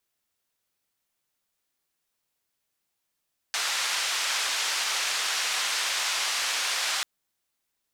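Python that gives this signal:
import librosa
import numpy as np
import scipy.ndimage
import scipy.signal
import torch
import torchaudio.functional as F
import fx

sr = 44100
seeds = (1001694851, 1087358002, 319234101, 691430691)

y = fx.band_noise(sr, seeds[0], length_s=3.49, low_hz=950.0, high_hz=5700.0, level_db=-28.0)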